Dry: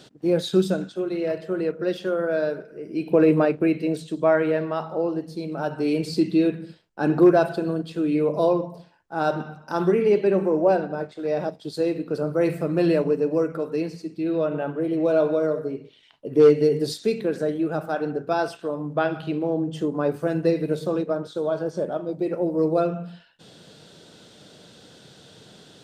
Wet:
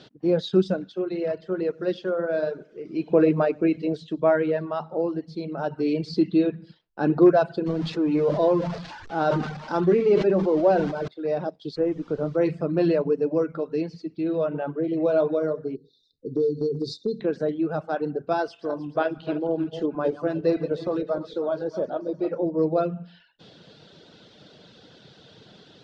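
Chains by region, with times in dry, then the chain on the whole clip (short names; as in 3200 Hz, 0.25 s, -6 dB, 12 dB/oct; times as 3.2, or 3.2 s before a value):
1.37–3.93 notches 50/100/150/200/250/300/350 Hz + lo-fi delay 96 ms, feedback 35%, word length 8-bit, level -15 dB
7.66–11.08 zero-crossing step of -33.5 dBFS + sustainer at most 46 dB/s
11.75–12.36 inverse Chebyshev low-pass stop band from 4200 Hz + added noise pink -51 dBFS
15.75–17.21 brick-wall FIR band-stop 530–3500 Hz + compressor 3:1, threshold -21 dBFS
18.41–22.46 regenerating reverse delay 0.154 s, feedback 60%, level -10 dB + bell 160 Hz -5.5 dB 0.88 oct
whole clip: reverb removal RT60 0.6 s; LPF 5100 Hz 24 dB/oct; dynamic EQ 2400 Hz, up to -4 dB, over -43 dBFS, Q 0.96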